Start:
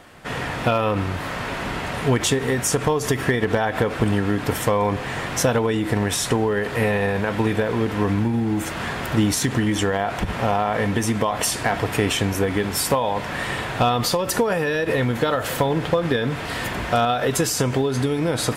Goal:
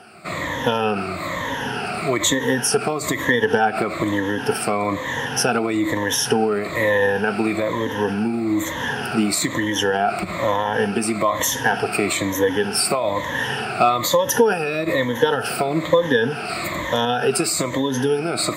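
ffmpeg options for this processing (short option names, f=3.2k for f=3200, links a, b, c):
-filter_complex "[0:a]afftfilt=real='re*pow(10,17/40*sin(2*PI*(1.1*log(max(b,1)*sr/1024/100)/log(2)-(-1.1)*(pts-256)/sr)))':imag='im*pow(10,17/40*sin(2*PI*(1.1*log(max(b,1)*sr/1024/100)/log(2)-(-1.1)*(pts-256)/sr)))':win_size=1024:overlap=0.75,highpass=84,acrossover=split=190|3000[a][b][c];[a]acompressor=threshold=-34dB:ratio=6[d];[d][b][c]amix=inputs=3:normalize=0,volume=-1dB"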